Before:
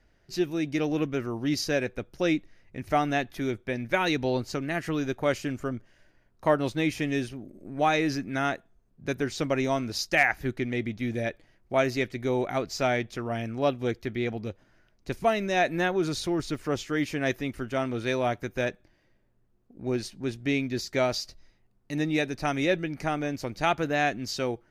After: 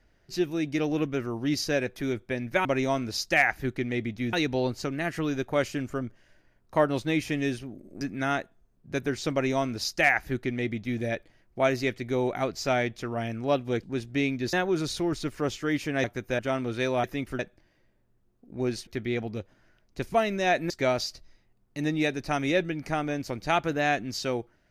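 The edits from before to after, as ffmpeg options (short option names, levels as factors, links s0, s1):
-filter_complex "[0:a]asplit=13[s0][s1][s2][s3][s4][s5][s6][s7][s8][s9][s10][s11][s12];[s0]atrim=end=1.962[s13];[s1]atrim=start=3.338:end=4.032[s14];[s2]atrim=start=9.458:end=11.142[s15];[s3]atrim=start=4.028:end=7.712[s16];[s4]atrim=start=8.148:end=13.972[s17];[s5]atrim=start=20.138:end=20.842[s18];[s6]atrim=start=15.798:end=17.312[s19];[s7]atrim=start=18.308:end=18.662[s20];[s8]atrim=start=17.658:end=18.312[s21];[s9]atrim=start=17.308:end=17.662[s22];[s10]atrim=start=18.658:end=20.142[s23];[s11]atrim=start=13.968:end=15.802[s24];[s12]atrim=start=20.838[s25];[s13][s14]acrossfade=d=0.004:c1=hsin:c2=hsin[s26];[s26][s15]acrossfade=d=0.004:c1=hsin:c2=hsin[s27];[s27][s16]acrossfade=d=0.004:c1=hsin:c2=hsin[s28];[s28][s17]acrossfade=d=0.004:c1=hsin:c2=hsin[s29];[s29][s18]acrossfade=d=0.004:c1=hsin:c2=hsin[s30];[s30][s19]acrossfade=d=0.004:c1=hsin:c2=hsin[s31];[s31][s20]acrossfade=d=0.004:c1=hsin:c2=hsin[s32];[s32][s21]acrossfade=d=0.004:c1=hsin:c2=hsin[s33];[s33][s22]acrossfade=d=0.004:c1=hsin:c2=hsin[s34];[s34][s23]acrossfade=d=0.004:c1=hsin:c2=hsin[s35];[s35][s24]acrossfade=d=0.004:c1=hsin:c2=hsin[s36];[s36][s25]acrossfade=d=0.004:c1=hsin:c2=hsin"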